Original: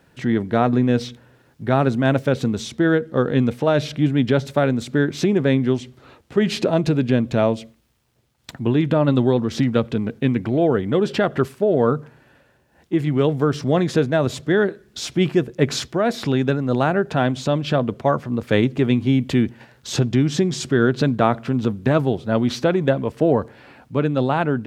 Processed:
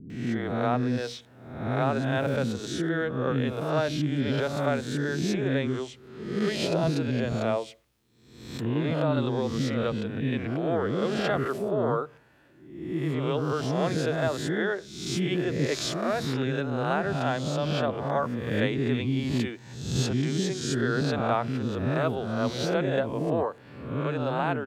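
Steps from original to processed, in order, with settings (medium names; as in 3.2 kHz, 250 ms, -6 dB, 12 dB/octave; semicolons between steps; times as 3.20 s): reverse spectral sustain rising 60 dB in 0.83 s; bands offset in time lows, highs 100 ms, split 350 Hz; trim -8.5 dB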